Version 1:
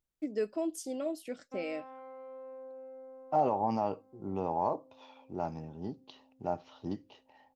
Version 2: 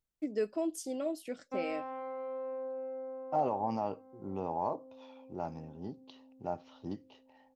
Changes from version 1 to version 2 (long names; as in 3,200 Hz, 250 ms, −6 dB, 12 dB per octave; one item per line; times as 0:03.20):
second voice −3.0 dB
background +7.5 dB